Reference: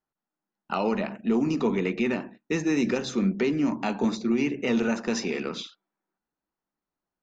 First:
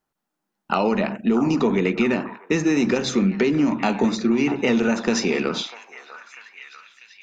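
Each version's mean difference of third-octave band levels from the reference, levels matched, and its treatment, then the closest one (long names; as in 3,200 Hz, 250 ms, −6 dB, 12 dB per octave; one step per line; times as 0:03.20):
2.0 dB: downward compressor, threshold −24 dBFS, peak gain reduction 5 dB
on a send: echo through a band-pass that steps 645 ms, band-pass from 1,000 Hz, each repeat 0.7 octaves, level −9 dB
on the sum: level +8.5 dB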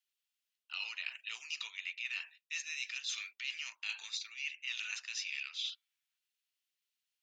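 18.5 dB: four-pole ladder high-pass 2,400 Hz, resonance 45%
reversed playback
downward compressor 10 to 1, threshold −50 dBFS, peak gain reduction 15 dB
reversed playback
level +13.5 dB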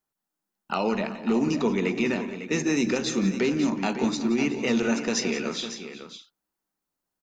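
4.0 dB: high-shelf EQ 4,600 Hz +10 dB
multi-tap delay 172/185/378/552 ms −16/−18.5/−17.5/−11 dB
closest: first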